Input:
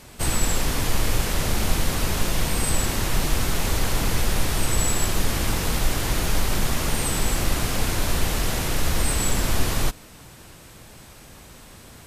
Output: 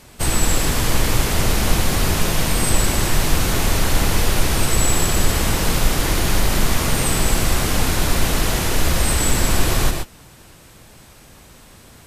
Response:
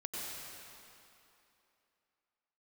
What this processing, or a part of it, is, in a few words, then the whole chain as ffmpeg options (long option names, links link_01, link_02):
keyed gated reverb: -filter_complex "[0:a]asplit=3[link_01][link_02][link_03];[1:a]atrim=start_sample=2205[link_04];[link_02][link_04]afir=irnorm=-1:irlink=0[link_05];[link_03]apad=whole_len=532180[link_06];[link_05][link_06]sidechaingate=range=-33dB:threshold=-34dB:ratio=16:detection=peak,volume=-0.5dB[link_07];[link_01][link_07]amix=inputs=2:normalize=0"